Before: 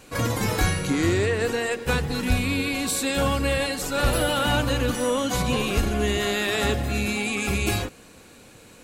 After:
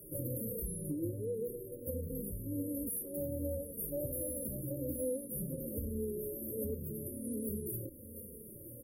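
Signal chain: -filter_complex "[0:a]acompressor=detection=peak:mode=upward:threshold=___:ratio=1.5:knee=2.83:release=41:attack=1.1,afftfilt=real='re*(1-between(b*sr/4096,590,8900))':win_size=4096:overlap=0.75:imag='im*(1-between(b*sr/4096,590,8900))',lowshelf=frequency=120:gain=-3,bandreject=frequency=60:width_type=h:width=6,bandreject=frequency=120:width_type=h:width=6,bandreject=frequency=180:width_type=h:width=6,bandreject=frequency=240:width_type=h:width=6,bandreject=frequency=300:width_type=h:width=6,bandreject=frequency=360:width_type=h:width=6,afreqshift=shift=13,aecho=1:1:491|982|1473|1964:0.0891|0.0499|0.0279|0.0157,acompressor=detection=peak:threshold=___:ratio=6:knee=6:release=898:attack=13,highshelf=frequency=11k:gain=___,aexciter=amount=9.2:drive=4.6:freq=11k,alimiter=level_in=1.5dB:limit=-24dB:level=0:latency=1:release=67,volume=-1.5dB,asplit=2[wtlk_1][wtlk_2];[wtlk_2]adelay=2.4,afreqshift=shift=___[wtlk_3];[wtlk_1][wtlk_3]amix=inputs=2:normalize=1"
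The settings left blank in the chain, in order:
-40dB, -32dB, -7.5, -1.3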